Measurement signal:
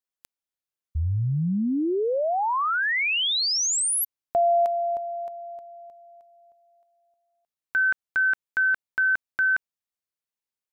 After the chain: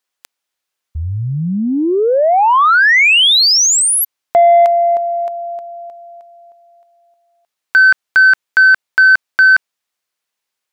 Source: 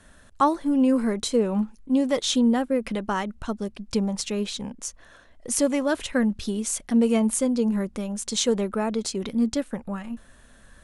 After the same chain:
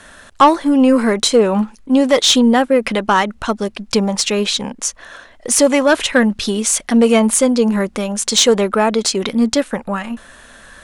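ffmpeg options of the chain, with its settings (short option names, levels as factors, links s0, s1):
-filter_complex "[0:a]asplit=2[s0][s1];[s1]highpass=f=720:p=1,volume=3.98,asoftclip=type=tanh:threshold=0.501[s2];[s0][s2]amix=inputs=2:normalize=0,lowpass=f=5900:p=1,volume=0.501,acontrast=69,volume=1.33"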